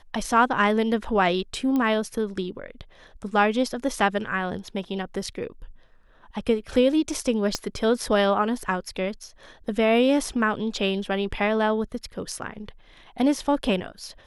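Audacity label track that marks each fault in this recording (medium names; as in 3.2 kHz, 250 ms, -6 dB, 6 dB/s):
1.760000	1.760000	pop -15 dBFS
7.550000	7.550000	pop -11 dBFS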